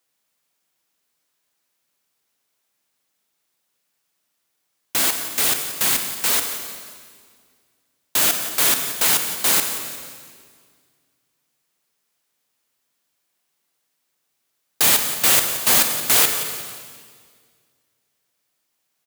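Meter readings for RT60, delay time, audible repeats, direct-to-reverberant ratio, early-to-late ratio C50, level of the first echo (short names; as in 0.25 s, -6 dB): 1.9 s, 0.178 s, 3, 5.0 dB, 6.0 dB, -13.0 dB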